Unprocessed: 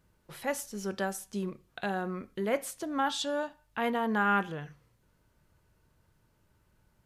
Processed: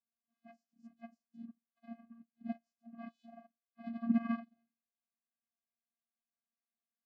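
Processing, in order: phase scrambler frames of 50 ms; band noise 430–2800 Hz -65 dBFS; vocoder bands 8, square 231 Hz; upward expander 2.5:1, over -43 dBFS; gain -2.5 dB

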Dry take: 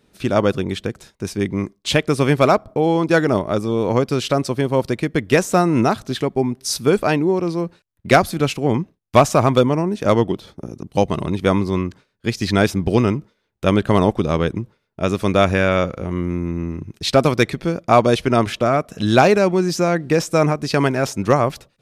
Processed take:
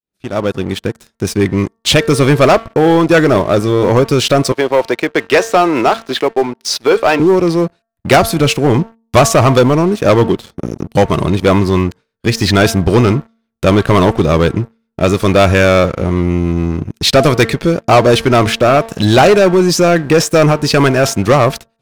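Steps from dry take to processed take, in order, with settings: opening faded in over 1.41 s; 4.52–7.2 three-band isolator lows -20 dB, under 330 Hz, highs -16 dB, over 5300 Hz; de-hum 226.6 Hz, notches 8; dynamic EQ 220 Hz, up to -4 dB, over -28 dBFS, Q 1.7; sample leveller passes 3

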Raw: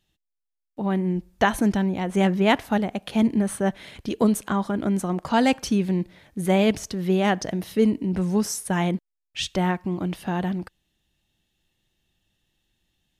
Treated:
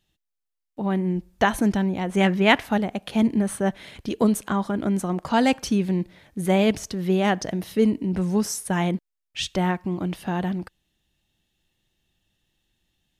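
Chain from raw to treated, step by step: 2.09–2.72 dynamic EQ 2200 Hz, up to +6 dB, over -36 dBFS, Q 0.81

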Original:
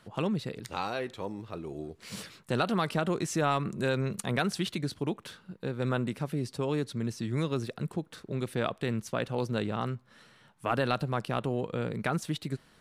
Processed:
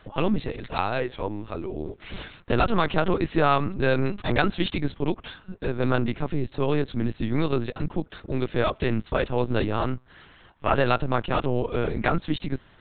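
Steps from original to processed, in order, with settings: HPF 53 Hz 6 dB/oct; LPC vocoder at 8 kHz pitch kept; gain +7.5 dB

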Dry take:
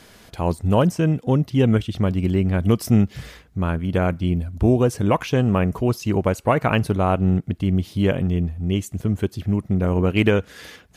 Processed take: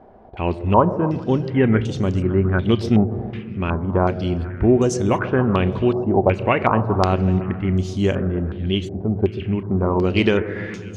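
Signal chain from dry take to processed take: bell 360 Hz +6.5 dB 0.28 oct; delay with a stepping band-pass 0.137 s, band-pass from 430 Hz, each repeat 0.7 oct, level -11 dB; on a send at -12 dB: reverb RT60 3.5 s, pre-delay 3 ms; on the sum: stepped low-pass 2.7 Hz 760–6600 Hz; gain -1.5 dB

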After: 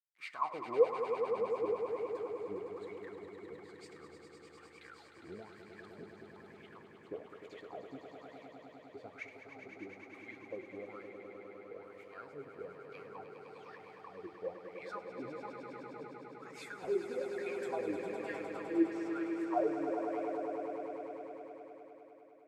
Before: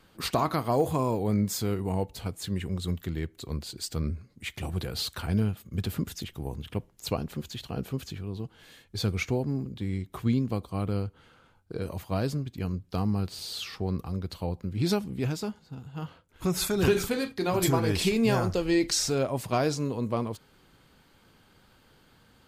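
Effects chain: bell 8000 Hz +7.5 dB 0.67 oct; bit-crush 8-bit; wah 1.1 Hz 320–2300 Hz, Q 14; swelling echo 0.102 s, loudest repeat 5, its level -9 dB; on a send at -15 dB: reverb RT60 0.75 s, pre-delay 4 ms; on the sum: gain +2 dB

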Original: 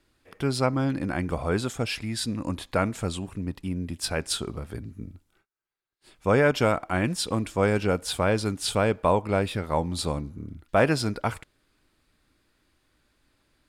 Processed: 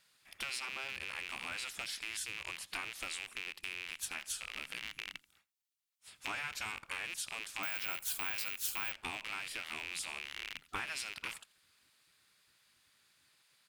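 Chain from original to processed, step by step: rattling part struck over -39 dBFS, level -21 dBFS; spectral gate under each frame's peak -10 dB weak; passive tone stack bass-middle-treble 5-5-5; compressor 6:1, threshold -48 dBFS, peak gain reduction 14 dB; on a send: echo 84 ms -23 dB; 7.63–8.92 on the sum: careless resampling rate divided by 2×, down none, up zero stuff; gain +10.5 dB

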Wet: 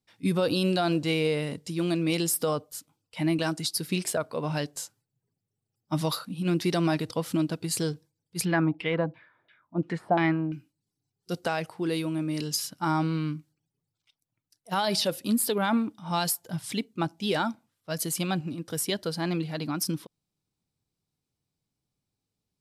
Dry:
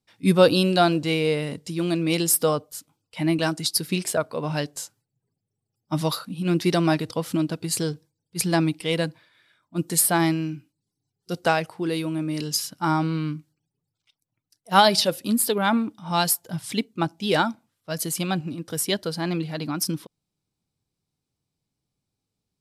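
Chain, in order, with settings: limiter -14.5 dBFS, peak gain reduction 10.5 dB; 8.45–10.53 LFO low-pass saw down 2.9 Hz 610–3000 Hz; gain -2.5 dB

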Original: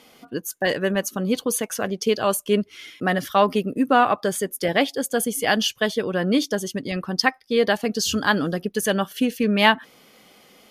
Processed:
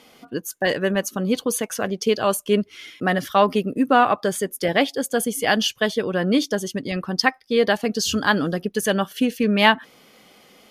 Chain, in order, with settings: high shelf 9400 Hz -3.5 dB; gain +1 dB

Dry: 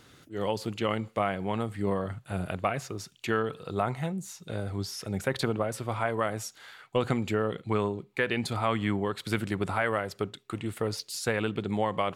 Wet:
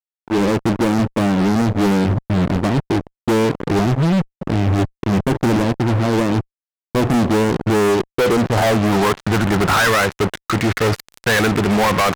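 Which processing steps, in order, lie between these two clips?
low-pass sweep 310 Hz -> 1900 Hz, 7.64–9.96; fuzz box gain 42 dB, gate -42 dBFS

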